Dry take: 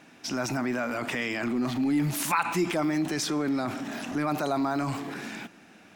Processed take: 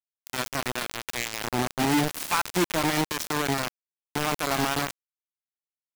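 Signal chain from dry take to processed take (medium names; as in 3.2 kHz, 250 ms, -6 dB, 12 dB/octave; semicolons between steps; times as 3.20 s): high-pass 54 Hz 6 dB/octave; bit crusher 4-bit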